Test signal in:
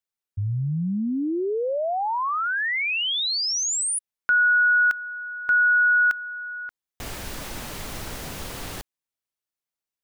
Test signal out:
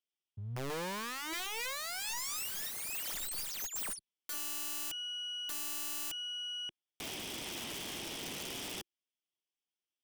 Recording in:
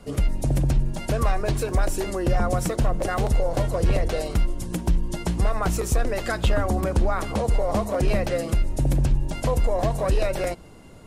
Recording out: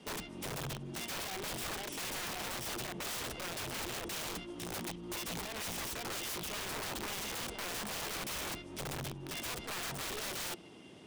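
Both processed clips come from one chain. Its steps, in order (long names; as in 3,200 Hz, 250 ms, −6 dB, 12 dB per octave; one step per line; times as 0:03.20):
lower of the sound and its delayed copy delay 0.36 ms
downward compressor 12 to 1, threshold −22 dBFS
loudspeaker in its box 200–9,800 Hz, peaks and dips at 350 Hz +4 dB, 530 Hz −5 dB, 1,700 Hz −3 dB, 3,300 Hz +9 dB, 7,800 Hz −5 dB
wrap-around overflow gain 30.5 dB
level −4 dB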